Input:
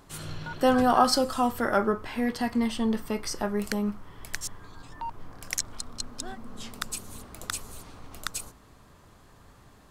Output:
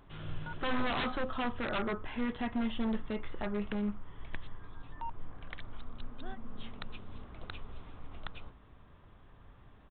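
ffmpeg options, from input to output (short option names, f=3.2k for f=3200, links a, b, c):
-af "aresample=8000,aeval=exprs='0.0794*(abs(mod(val(0)/0.0794+3,4)-2)-1)':c=same,aresample=44100,lowshelf=f=78:g=9,volume=-6dB"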